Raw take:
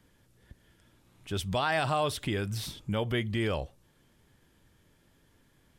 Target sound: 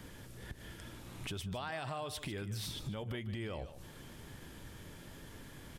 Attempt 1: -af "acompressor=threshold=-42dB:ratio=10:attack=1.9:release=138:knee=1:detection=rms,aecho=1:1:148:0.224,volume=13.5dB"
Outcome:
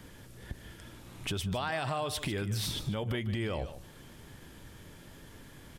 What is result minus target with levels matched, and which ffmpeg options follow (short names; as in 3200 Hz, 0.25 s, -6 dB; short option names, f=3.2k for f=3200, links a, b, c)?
compressor: peak gain reduction -7 dB
-af "acompressor=threshold=-50dB:ratio=10:attack=1.9:release=138:knee=1:detection=rms,aecho=1:1:148:0.224,volume=13.5dB"